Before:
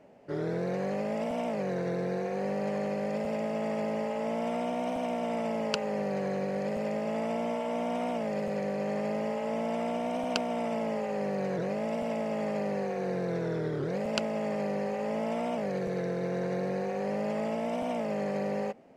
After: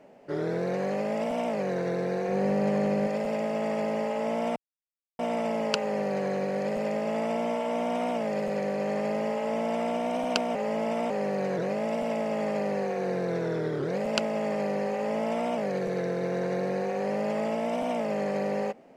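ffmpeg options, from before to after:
-filter_complex "[0:a]asettb=1/sr,asplit=3[a][b][c];[a]atrim=end=2.284[d];[b]atrim=start=2.28:end=3.07,asetpts=PTS-STARTPTS,afade=t=in:d=0.004:c=qsin,afade=t=out:st=0.786:d=0.004:c=qsin,lowshelf=f=230:g=11[e];[c]atrim=start=3.066[f];[d][e]acrossfade=d=0.004:c1=hsin:c2=qsin[g];[g][f]acrossfade=d=0.004:c1=qsin:c2=hsin,asplit=5[h][i][j][k][l];[h]atrim=end=4.56,asetpts=PTS-STARTPTS,afade=t=out:st=4.556:d=0.004:c=hsin[m];[i]atrim=start=4.56:end=5.19,asetpts=PTS-STARTPTS,volume=0[n];[j]atrim=start=5.19:end=10.552,asetpts=PTS-STARTPTS,afade=t=in:d=0.004:c=hsin[o];[k]atrim=start=10.548:end=11.102,asetpts=PTS-STARTPTS,areverse[p];[l]atrim=start=11.098[q];[m][n][o]concat=n=3:v=0:a=1[r];[r][p]acrossfade=d=0.004:c1=hsin:c2=hsin[s];[s][q]acrossfade=d=0.004:c1=hsin:c2=hsin,equalizer=f=66:w=0.8:g=-11,volume=3.5dB"

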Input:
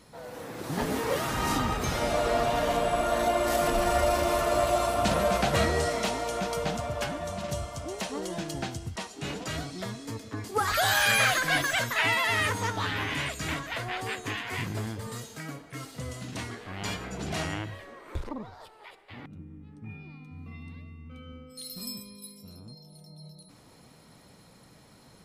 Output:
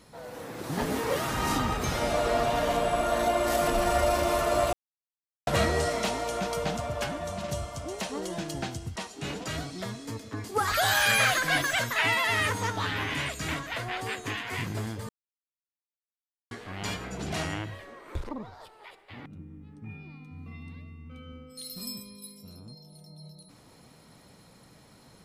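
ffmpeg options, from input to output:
-filter_complex "[0:a]asplit=5[a][b][c][d][e];[a]atrim=end=4.73,asetpts=PTS-STARTPTS,afade=t=out:st=4.726:d=0.004:c=hsin[f];[b]atrim=start=4.73:end=5.47,asetpts=PTS-STARTPTS,volume=0[g];[c]atrim=start=5.47:end=15.09,asetpts=PTS-STARTPTS,afade=t=in:d=0.004:c=hsin,afade=t=out:st=9.616:d=0.004:c=hsin[h];[d]atrim=start=15.09:end=16.51,asetpts=PTS-STARTPTS,volume=0[i];[e]atrim=start=16.51,asetpts=PTS-STARTPTS,afade=t=in:d=0.004:c=hsin[j];[f][g][h][i][j]concat=n=5:v=0:a=1"

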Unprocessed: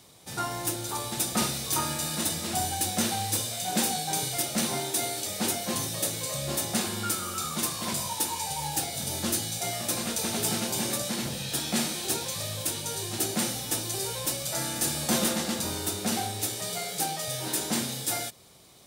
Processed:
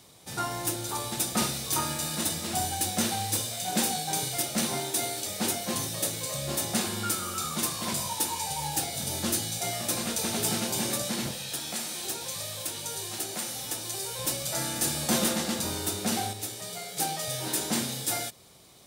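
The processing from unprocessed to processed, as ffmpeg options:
-filter_complex "[0:a]asettb=1/sr,asplit=3[a][b][c];[a]atrim=end=1.164[d];[b]atrim=start=1.16:end=6.6,asetpts=PTS-STARTPTS,afade=t=in:d=0.004:c=qsin,afade=t=out:st=5.436:d=0.004:c=qsin,aeval=exprs='sgn(val(0))*max(abs(val(0))-0.00282,0)':c=same[e];[c]atrim=start=6.596[f];[d][e]acrossfade=d=0.004:c1=hsin:c2=qsin[g];[g][f]acrossfade=d=0.004:c1=qsin:c2=hsin,asettb=1/sr,asplit=3[h][i][j];[h]atrim=end=11.314[k];[i]atrim=start=11.31:end=14.19,asetpts=PTS-STARTPTS,afade=t=in:d=0.004:c=qsin,afade=t=out:st=2.876:d=0.004:c=qsin,acrossover=split=440|5900[l][m][n];[l]acompressor=threshold=-46dB:ratio=4[o];[m]acompressor=threshold=-37dB:ratio=4[p];[n]acompressor=threshold=-33dB:ratio=4[q];[o][p][q]amix=inputs=3:normalize=0[r];[j]atrim=start=14.186[s];[k][r]acrossfade=d=0.004:c1=hsin:c2=qsin[t];[t][s]acrossfade=d=0.004:c1=qsin:c2=hsin,asplit=3[u][v][w];[u]atrim=end=16.332[x];[v]atrim=start=16.328:end=16.972,asetpts=PTS-STARTPTS,volume=-5dB[y];[w]atrim=start=16.968[z];[x][y]acrossfade=d=0.004:c1=hsin:c2=hsin[aa];[aa][z]acrossfade=d=0.004:c1=hsin:c2=hsin"

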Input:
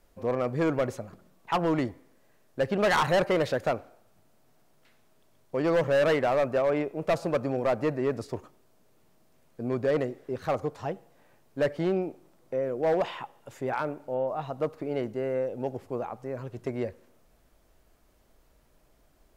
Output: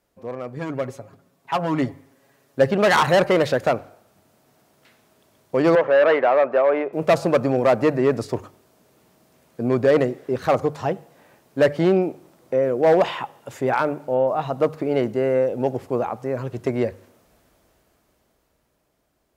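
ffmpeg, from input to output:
-filter_complex "[0:a]asettb=1/sr,asplit=3[a][b][c];[a]atrim=end=0.564[d];[b]atrim=start=0.56:end=2.71,asetpts=PTS-STARTPTS,afade=t=in:d=0.004:c=qsin,afade=t=out:st=2.146:d=0.004:c=qsin,aecho=1:1:7.3:0.72,atrim=end_sample=94815[e];[c]atrim=start=2.706[f];[d][e]acrossfade=d=0.004:c1=hsin:c2=qsin[g];[g][f]acrossfade=d=0.004:c1=qsin:c2=hsin,asettb=1/sr,asplit=3[h][i][j];[h]atrim=end=5.754[k];[i]atrim=start=5.75:end=6.93,asetpts=PTS-STARTPTS,afade=t=in:d=0.004:c=qsin,afade=t=out:st=1.176:d=0.004:c=qsin,highpass=420,lowpass=2.2k[l];[j]atrim=start=6.926[m];[k][l]acrossfade=d=0.004:c1=hsin:c2=qsin[n];[n][m]acrossfade=d=0.004:c1=qsin:c2=hsin,highpass=68,bandreject=f=50:t=h:w=6,bandreject=f=100:t=h:w=6,bandreject=f=150:t=h:w=6,dynaudnorm=f=120:g=31:m=13.5dB,volume=-3.5dB"

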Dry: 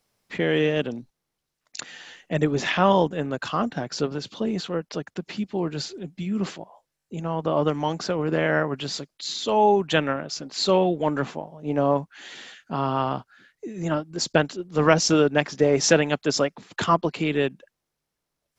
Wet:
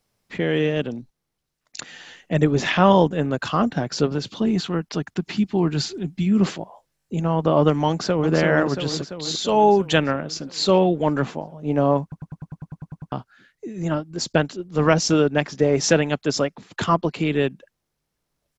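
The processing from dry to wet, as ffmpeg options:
-filter_complex "[0:a]asettb=1/sr,asplit=3[a][b][c];[a]atrim=end=4.374[d];[b]atrim=start=4.37:end=6.27,asetpts=PTS-STARTPTS,afade=t=in:d=0.004:c=qsin,afade=t=out:st=1.896:d=0.004:c=qsin,equalizer=f=530:t=o:w=0.37:g=-10.5[e];[c]atrim=start=6.266[f];[d][e]acrossfade=d=0.004:c1=hsin:c2=qsin[g];[g][f]acrossfade=d=0.004:c1=qsin:c2=hsin,asplit=2[h][i];[i]afade=t=in:st=7.89:d=0.01,afade=t=out:st=8.33:d=0.01,aecho=0:1:340|680|1020|1360|1700|2040|2380|2720|3060|3400:0.630957|0.410122|0.266579|0.173277|0.11263|0.0732094|0.0475861|0.030931|0.0201051|0.0130683[j];[h][j]amix=inputs=2:normalize=0,asettb=1/sr,asplit=3[k][l][m];[k]atrim=end=9.284[n];[l]atrim=start=9.28:end=9.98,asetpts=PTS-STARTPTS,afade=t=in:d=0.004:c=qsin,afade=t=out:st=0.696:d=0.004:c=qsin,highshelf=f=7k:g=8[o];[m]atrim=start=9.976[p];[n][o]acrossfade=d=0.004:c1=hsin:c2=qsin[q];[q][p]acrossfade=d=0.004:c1=qsin:c2=hsin,asplit=12[r][s][t][u][v][w][x][y][z][aa][ab][ac];[r]atrim=end=12.122[ad];[s]atrim=start=12.018:end=12.122[ae];[t]atrim=start=12.018:end=12.122[af];[u]atrim=start=12.018:end=12.122[ag];[v]atrim=start=12.018:end=12.122[ah];[w]atrim=start=12.018:end=12.122[ai];[x]atrim=start=12.018:end=12.122[aj];[y]atrim=start=12.018:end=12.122[ak];[z]atrim=start=12.018:end=12.122[al];[aa]atrim=start=12.018:end=12.122[am];[ab]atrim=start=12.018:end=12.122[an];[ac]atrim=start=13.118[ao];[ad][ae]acrossfade=d=0.004:c1=hsin:c2=hsin[ap];[ap][af]acrossfade=d=0.004:c1=hsin:c2=hsin[aq];[aq][ag]acrossfade=d=0.004:c1=hsin:c2=hsin[ar];[ar][ah]acrossfade=d=0.004:c1=hsin:c2=hsin[as];[as][ai]acrossfade=d=0.004:c1=hsin:c2=hsin[at];[at][aj]acrossfade=d=0.004:c1=hsin:c2=hsin[au];[au][ak]acrossfade=d=0.004:c1=hsin:c2=hsin[av];[av][al]acrossfade=d=0.004:c1=hsin:c2=hsin[aw];[aw][am]acrossfade=d=0.004:c1=hsin:c2=hsin[ax];[ax][an]acrossfade=d=0.004:c1=hsin:c2=hsin[ay];[ay][ao]acrossfade=d=0.004:c1=hsin:c2=hsin,lowshelf=f=220:g=6,dynaudnorm=f=210:g=21:m=11.5dB,volume=-1dB"

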